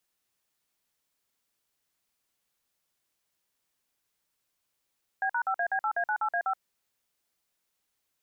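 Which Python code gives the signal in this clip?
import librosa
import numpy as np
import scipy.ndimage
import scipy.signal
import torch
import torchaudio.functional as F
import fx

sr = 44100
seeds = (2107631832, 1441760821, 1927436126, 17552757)

y = fx.dtmf(sr, digits='B#5AB8A98A5', tone_ms=75, gap_ms=49, level_db=-28.0)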